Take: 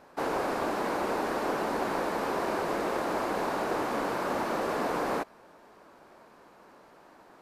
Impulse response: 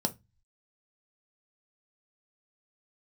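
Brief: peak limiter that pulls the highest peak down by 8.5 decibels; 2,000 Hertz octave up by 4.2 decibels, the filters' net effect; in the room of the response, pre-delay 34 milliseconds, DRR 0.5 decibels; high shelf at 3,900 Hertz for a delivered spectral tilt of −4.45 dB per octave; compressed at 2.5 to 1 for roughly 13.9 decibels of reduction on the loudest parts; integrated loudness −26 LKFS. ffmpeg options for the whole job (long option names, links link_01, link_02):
-filter_complex "[0:a]equalizer=frequency=2000:width_type=o:gain=7,highshelf=frequency=3900:gain=-6.5,acompressor=threshold=-48dB:ratio=2.5,alimiter=level_in=15dB:limit=-24dB:level=0:latency=1,volume=-15dB,asplit=2[link_01][link_02];[1:a]atrim=start_sample=2205,adelay=34[link_03];[link_02][link_03]afir=irnorm=-1:irlink=0,volume=-6dB[link_04];[link_01][link_04]amix=inputs=2:normalize=0,volume=18dB"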